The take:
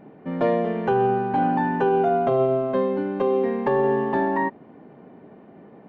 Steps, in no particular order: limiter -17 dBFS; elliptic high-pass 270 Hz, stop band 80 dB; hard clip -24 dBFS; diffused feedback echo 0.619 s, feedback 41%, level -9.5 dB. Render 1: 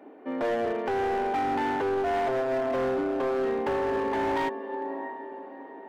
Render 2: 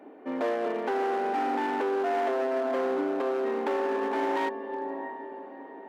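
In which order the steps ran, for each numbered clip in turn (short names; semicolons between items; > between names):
elliptic high-pass > limiter > diffused feedback echo > hard clip; limiter > diffused feedback echo > hard clip > elliptic high-pass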